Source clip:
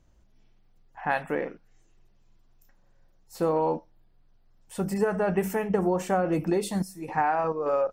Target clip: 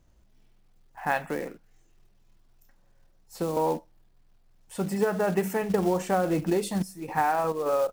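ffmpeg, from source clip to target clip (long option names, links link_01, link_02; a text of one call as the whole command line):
ffmpeg -i in.wav -filter_complex "[0:a]asettb=1/sr,asplit=3[link_01][link_02][link_03];[link_01]atrim=end=4.764[link_04];[link_02]atrim=start=4.76:end=5.62,asetpts=PTS-STARTPTS,afade=type=in:duration=0.004:curve=qsin,afade=type=out:start_time=0.856:duration=0.004:curve=qsin,highpass=110[link_05];[link_03]atrim=start=5.616[link_06];[link_04][link_05]acrossfade=duration=0.004:curve1=hsin:curve2=qsin[link_07];[link_07][link_06]acrossfade=duration=0.004:curve1=qsin:curve2=hsin,acrusher=bits=5:mode=log:mix=0:aa=0.000001,asettb=1/sr,asplit=3[link_08][link_09][link_10];[link_08]atrim=end=1.274[link_11];[link_09]atrim=start=1.27:end=3.57,asetpts=PTS-STARTPTS,afade=type=in:duration=0.004:curve=qsin,afade=type=out:start_time=2.296:duration=0.004:curve=qsin,acrossover=split=320|3000[link_12][link_13][link_14];[link_13]acompressor=threshold=-31dB:ratio=6[link_15];[link_12][link_15][link_14]amix=inputs=3:normalize=0[link_16];[link_10]atrim=start=3.566[link_17];[link_11][link_16]acrossfade=duration=0.004:curve1=hsin:curve2=qsin[link_18];[link_18][link_17]acrossfade=duration=0.004:curve1=qsin:curve2=hsin" out.wav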